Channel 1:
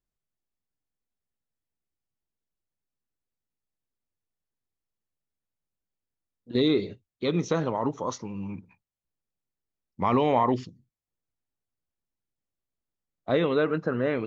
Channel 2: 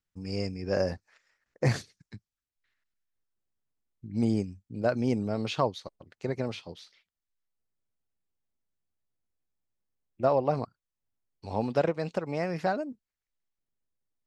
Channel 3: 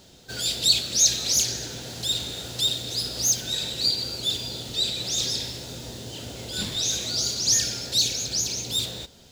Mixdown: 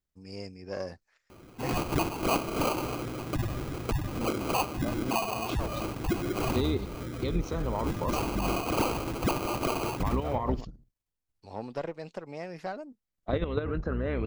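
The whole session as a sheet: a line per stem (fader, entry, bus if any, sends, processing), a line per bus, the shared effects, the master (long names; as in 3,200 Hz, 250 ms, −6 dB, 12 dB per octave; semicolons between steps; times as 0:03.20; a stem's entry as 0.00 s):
+3.0 dB, 0.00 s, no send, sub-octave generator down 2 octaves, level 0 dB; low-shelf EQ 100 Hz +5.5 dB; output level in coarse steps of 10 dB
−6.5 dB, 0.00 s, no send, one-sided soft clipper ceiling −23 dBFS; bass and treble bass −4 dB, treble +1 dB
+0.5 dB, 1.30 s, no send, gate on every frequency bin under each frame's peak −15 dB strong; sample-rate reduction 1,800 Hz, jitter 0%; hollow resonant body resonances 320/1,200/2,500 Hz, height 8 dB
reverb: not used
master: downward compressor 3 to 1, threshold −27 dBFS, peak gain reduction 11 dB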